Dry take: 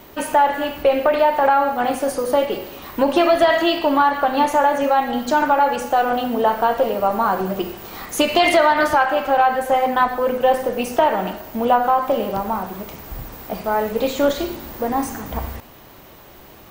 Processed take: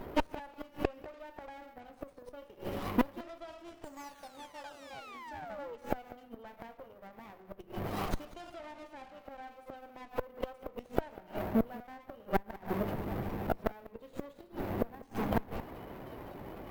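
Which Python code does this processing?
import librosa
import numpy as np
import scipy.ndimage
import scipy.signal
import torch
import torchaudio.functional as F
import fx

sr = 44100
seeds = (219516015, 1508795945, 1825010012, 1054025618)

p1 = fx.highpass(x, sr, hz=260.0, slope=6)
p2 = fx.peak_eq(p1, sr, hz=13000.0, db=6.0, octaves=2.3)
p3 = fx.spec_paint(p2, sr, seeds[0], shape='fall', start_s=3.84, length_s=1.92, low_hz=450.0, high_hz=8300.0, level_db=-12.0)
p4 = fx.gate_flip(p3, sr, shuts_db=-14.0, range_db=-32)
p5 = fx.spec_topn(p4, sr, count=64)
p6 = p5 + fx.echo_single(p5, sr, ms=194, db=-19.5, dry=0)
p7 = fx.running_max(p6, sr, window=17)
y = p7 * librosa.db_to_amplitude(1.0)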